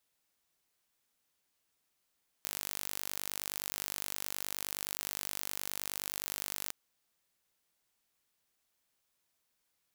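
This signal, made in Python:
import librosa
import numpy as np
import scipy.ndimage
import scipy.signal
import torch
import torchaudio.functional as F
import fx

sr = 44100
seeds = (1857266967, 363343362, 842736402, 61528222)

y = 10.0 ** (-10.5 / 20.0) * (np.mod(np.arange(round(4.27 * sr)), round(sr / 49.6)) == 0)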